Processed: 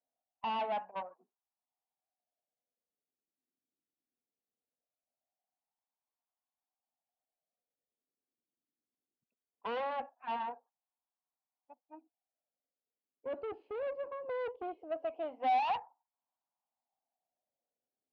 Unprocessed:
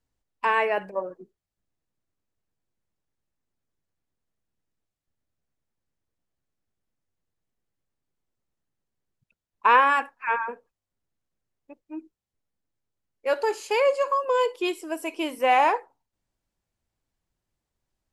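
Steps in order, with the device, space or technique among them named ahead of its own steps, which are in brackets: wah-wah guitar rig (wah 0.2 Hz 340–1000 Hz, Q 3.8; tube stage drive 35 dB, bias 0.5; speaker cabinet 84–3700 Hz, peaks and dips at 250 Hz +9 dB, 370 Hz -7 dB, 730 Hz +10 dB, 1800 Hz -3 dB, 2800 Hz +4 dB); 13.75–14.5 notch 3100 Hz, Q 6.4

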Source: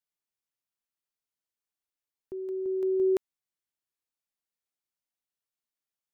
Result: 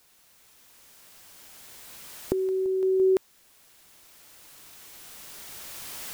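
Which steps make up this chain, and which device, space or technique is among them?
cheap recorder with automatic gain (white noise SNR 29 dB; recorder AGC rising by 8.1 dB/s); gain +3.5 dB

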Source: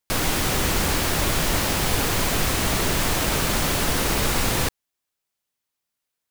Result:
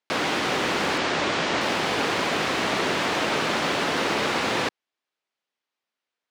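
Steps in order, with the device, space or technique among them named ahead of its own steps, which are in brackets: early digital voice recorder (BPF 260–3800 Hz; block floating point 7-bit); 0.98–1.61 LPF 8200 Hz 24 dB/oct; gain +2 dB

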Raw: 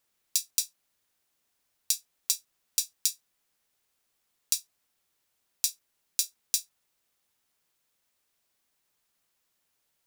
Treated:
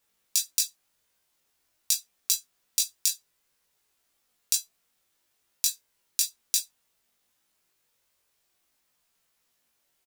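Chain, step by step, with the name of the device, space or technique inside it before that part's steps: double-tracked vocal (doubler 21 ms -5 dB; chorus 0.43 Hz, delay 16.5 ms, depth 2.6 ms); gain +5 dB

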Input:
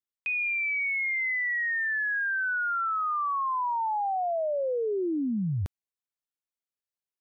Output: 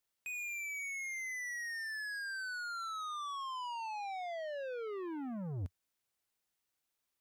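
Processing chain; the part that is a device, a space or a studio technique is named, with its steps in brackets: open-reel tape (soft clip -36.5 dBFS, distortion -11 dB; bell 91 Hz +5 dB 0.77 oct; white noise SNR 44 dB); gain -3.5 dB

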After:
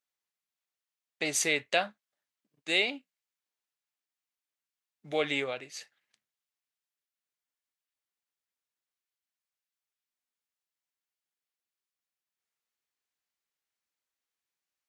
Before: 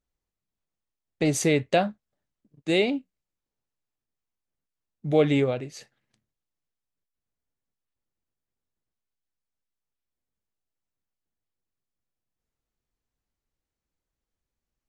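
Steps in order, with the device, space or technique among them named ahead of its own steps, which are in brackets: filter by subtraction (in parallel: LPF 2100 Hz 12 dB/oct + phase invert)

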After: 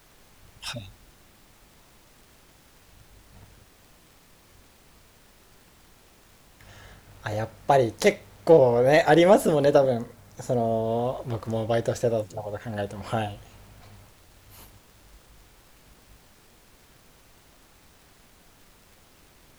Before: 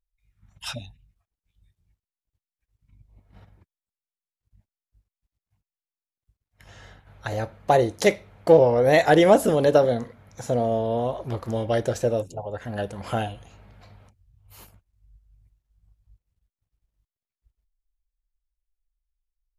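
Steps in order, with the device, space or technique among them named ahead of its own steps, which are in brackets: record under a worn stylus (tracing distortion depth 0.024 ms; crackle; pink noise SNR 28 dB); 9.78–10.87 bell 2700 Hz -3.5 dB 2.1 oct; gain -1 dB

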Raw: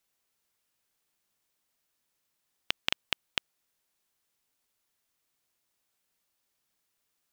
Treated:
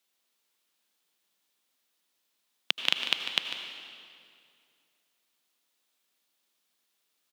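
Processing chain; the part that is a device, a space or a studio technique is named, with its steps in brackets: PA in a hall (HPF 180 Hz 24 dB/oct; bell 3500 Hz +6 dB 0.81 oct; echo 0.148 s -10.5 dB; reverb RT60 2.4 s, pre-delay 74 ms, DRR 5.5 dB)

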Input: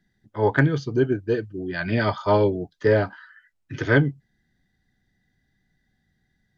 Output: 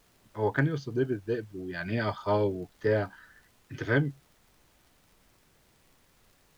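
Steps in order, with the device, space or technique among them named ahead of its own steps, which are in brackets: vinyl LP (crackle; pink noise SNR 32 dB); gain -7.5 dB

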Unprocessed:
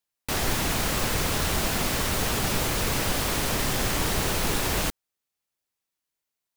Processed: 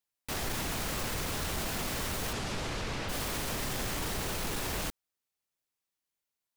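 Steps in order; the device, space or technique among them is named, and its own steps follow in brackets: soft clipper into limiter (soft clip -16.5 dBFS, distortion -22 dB; limiter -23 dBFS, peak gain reduction 5.5 dB); 2.32–3.08 LPF 7500 Hz -> 4500 Hz 12 dB/oct; gain -3.5 dB

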